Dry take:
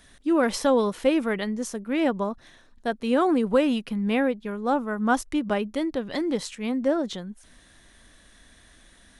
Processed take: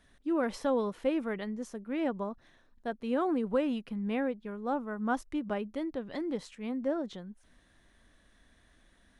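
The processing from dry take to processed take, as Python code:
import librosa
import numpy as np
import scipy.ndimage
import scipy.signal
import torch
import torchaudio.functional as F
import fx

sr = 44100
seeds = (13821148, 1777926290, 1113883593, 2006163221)

y = fx.high_shelf(x, sr, hz=3300.0, db=-9.5)
y = y * librosa.db_to_amplitude(-8.0)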